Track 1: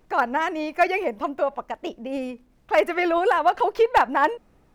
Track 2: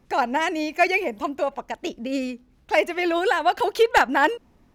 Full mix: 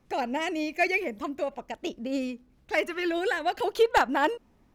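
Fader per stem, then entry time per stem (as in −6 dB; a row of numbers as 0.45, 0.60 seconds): −11.5, −5.5 decibels; 0.00, 0.00 seconds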